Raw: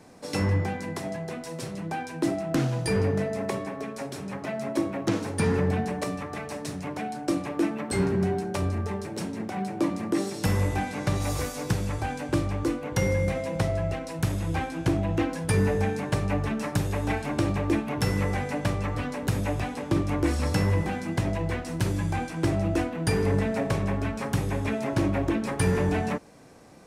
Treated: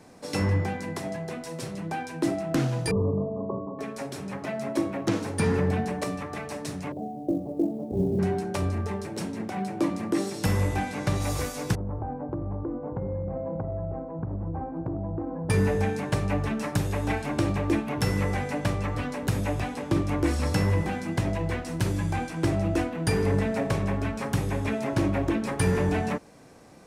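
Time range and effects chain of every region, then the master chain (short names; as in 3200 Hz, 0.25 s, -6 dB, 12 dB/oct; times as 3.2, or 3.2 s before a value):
2.91–3.79 Chebyshev low-pass 1200 Hz, order 10 + bell 790 Hz -10 dB 0.3 oct
6.92–8.19 elliptic low-pass 690 Hz, stop band 80 dB + companded quantiser 8-bit
11.75–15.5 LPF 1000 Hz 24 dB/oct + compressor, threshold -27 dBFS
whole clip: dry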